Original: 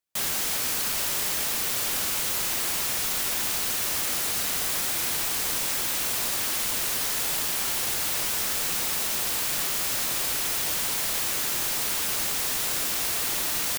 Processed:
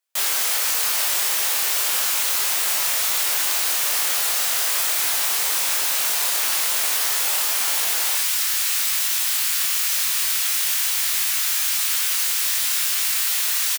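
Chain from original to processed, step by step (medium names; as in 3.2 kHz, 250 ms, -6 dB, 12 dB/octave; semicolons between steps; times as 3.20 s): high-pass 620 Hz 12 dB/octave, from 8.15 s 1.5 kHz; doubling 24 ms -3.5 dB; crackling interface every 0.34 s, samples 512, repeat, from 0.37 s; trim +4.5 dB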